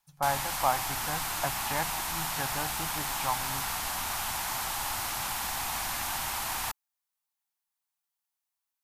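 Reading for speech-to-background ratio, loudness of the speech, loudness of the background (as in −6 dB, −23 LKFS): −3.5 dB, −35.0 LKFS, −31.5 LKFS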